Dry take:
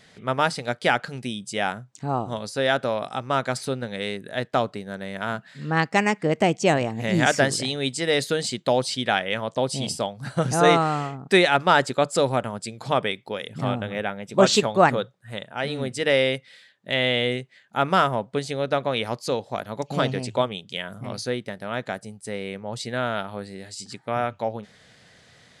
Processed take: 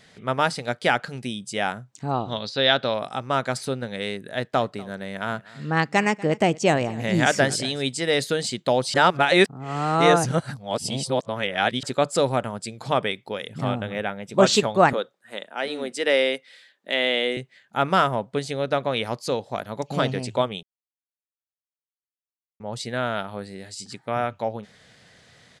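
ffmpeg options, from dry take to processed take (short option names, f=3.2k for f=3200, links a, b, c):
-filter_complex "[0:a]asettb=1/sr,asplit=3[a][b][c];[a]atrim=end=2.114[d];[b]atrim=start=2.11:end=2.94,asetpts=PTS-STARTPTS,afade=t=in:d=0.004:c=qsin,afade=t=out:st=0.826:d=0.004:c=qsin,lowpass=f=3.9k:t=q:w=3.6[e];[c]atrim=start=2.936[f];[d][e]acrossfade=d=0.004:c1=hsin:c2=qsin[g];[g][f]acrossfade=d=0.004:c1=qsin:c2=hsin,asplit=3[h][i][j];[h]afade=t=out:st=4.56:d=0.02[k];[i]aecho=1:1:241:0.0841,afade=t=in:st=4.56:d=0.02,afade=t=out:st=7.81:d=0.02[l];[j]afade=t=in:st=7.81:d=0.02[m];[k][l][m]amix=inputs=3:normalize=0,asettb=1/sr,asplit=3[n][o][p];[n]atrim=end=14.934[q];[o]atrim=start=14.93:end=17.37,asetpts=PTS-STARTPTS,afade=t=in:d=0.004:c=qsin,afade=t=out:st=2.436:d=0.004:c=qsin,highpass=f=250:w=0.5412,highpass=f=250:w=1.3066[r];[p]atrim=start=17.366[s];[q][r]acrossfade=d=0.004:c1=hsin:c2=qsin[t];[t][s]acrossfade=d=0.004:c1=qsin:c2=hsin,asplit=5[u][v][w][x][y];[u]atrim=end=8.942[z];[v]atrim=start=8.938:end=11.832,asetpts=PTS-STARTPTS,areverse[aa];[w]atrim=start=11.828:end=20.63,asetpts=PTS-STARTPTS,afade=t=out:st=8.798:d=0.004:c=hsin[ab];[x]atrim=start=20.63:end=22.6,asetpts=PTS-STARTPTS,volume=0[ac];[y]atrim=start=22.6,asetpts=PTS-STARTPTS,afade=t=in:d=0.004:c=hsin[ad];[z][aa]acrossfade=d=0.004:c1=hsin:c2=hsin[ae];[ab][ac][ad]concat=n=3:v=0:a=1[af];[ae][af]acrossfade=d=0.004:c1=hsin:c2=hsin"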